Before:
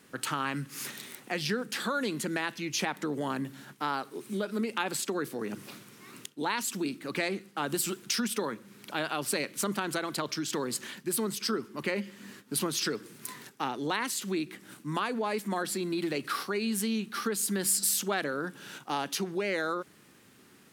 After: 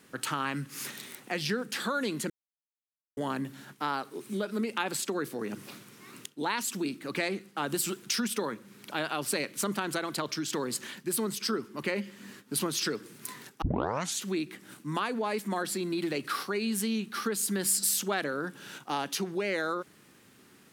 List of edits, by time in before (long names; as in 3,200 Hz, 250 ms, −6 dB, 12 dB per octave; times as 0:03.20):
0:02.30–0:03.17: silence
0:13.62: tape start 0.60 s